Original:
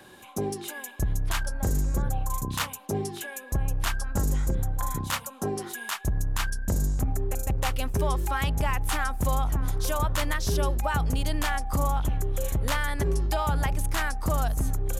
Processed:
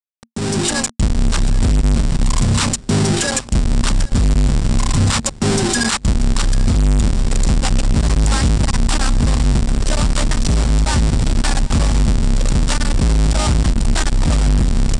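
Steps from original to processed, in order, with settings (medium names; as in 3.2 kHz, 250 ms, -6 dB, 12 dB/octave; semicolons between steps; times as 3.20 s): square wave that keeps the level; peak limiter -26.5 dBFS, peak gain reduction 35.5 dB; bit crusher 6-bit; steep low-pass 9 kHz 48 dB/octave; tone controls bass +7 dB, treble +12 dB; band-stop 6.4 kHz, Q 11; on a send: feedback delay 788 ms, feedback 53%, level -21 dB; on the sum: level rider gain up to 11.5 dB; peaking EQ 230 Hz +9 dB 0.21 oct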